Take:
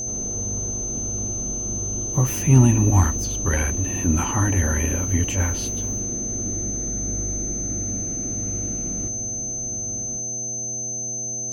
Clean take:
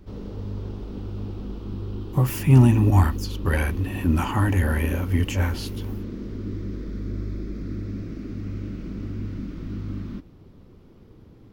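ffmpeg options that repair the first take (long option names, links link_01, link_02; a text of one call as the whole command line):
ffmpeg -i in.wav -af "bandreject=frequency=118.6:width_type=h:width=4,bandreject=frequency=237.2:width_type=h:width=4,bandreject=frequency=355.8:width_type=h:width=4,bandreject=frequency=474.4:width_type=h:width=4,bandreject=frequency=593:width_type=h:width=4,bandreject=frequency=711.6:width_type=h:width=4,bandreject=frequency=6200:width=30,asetnsamples=nb_out_samples=441:pad=0,asendcmd='9.08 volume volume 8.5dB',volume=0dB" out.wav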